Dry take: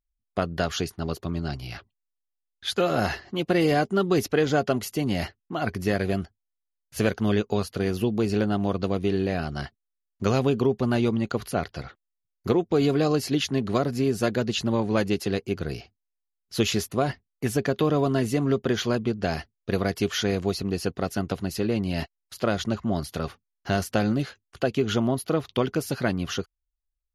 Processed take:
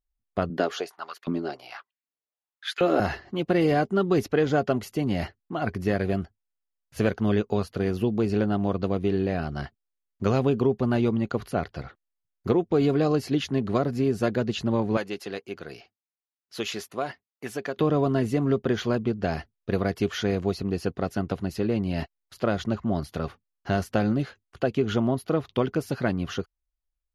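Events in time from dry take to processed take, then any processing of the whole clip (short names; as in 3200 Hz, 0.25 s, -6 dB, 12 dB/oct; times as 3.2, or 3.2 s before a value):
0.5–3 LFO high-pass saw up 1.3 Hz 210–2300 Hz
14.97–17.77 HPF 770 Hz 6 dB/oct
whole clip: high shelf 3300 Hz -10 dB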